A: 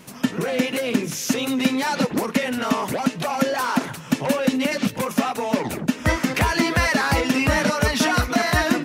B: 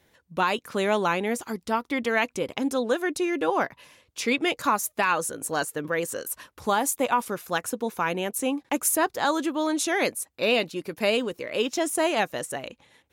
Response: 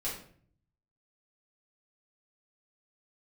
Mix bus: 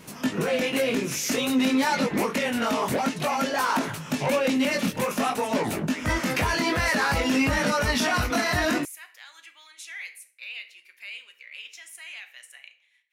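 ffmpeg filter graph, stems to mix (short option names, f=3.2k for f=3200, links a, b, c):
-filter_complex "[0:a]alimiter=limit=-15dB:level=0:latency=1:release=11,flanger=delay=18.5:depth=3.9:speed=0.53,volume=2.5dB[a];[1:a]alimiter=limit=-17.5dB:level=0:latency=1,highpass=f=2.2k:t=q:w=3.5,volume=-16.5dB,asplit=2[b][c];[c]volume=-7dB[d];[2:a]atrim=start_sample=2205[e];[d][e]afir=irnorm=-1:irlink=0[f];[a][b][f]amix=inputs=3:normalize=0"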